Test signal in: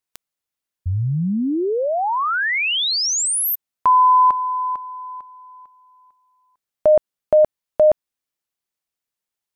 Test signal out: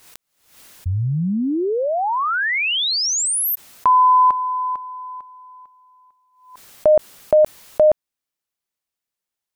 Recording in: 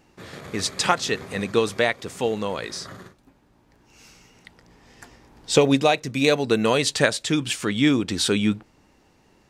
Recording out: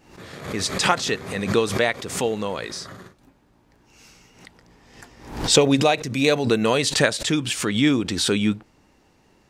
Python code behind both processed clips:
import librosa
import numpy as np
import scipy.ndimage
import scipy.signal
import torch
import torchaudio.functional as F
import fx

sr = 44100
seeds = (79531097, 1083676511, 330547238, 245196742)

y = fx.pre_swell(x, sr, db_per_s=91.0)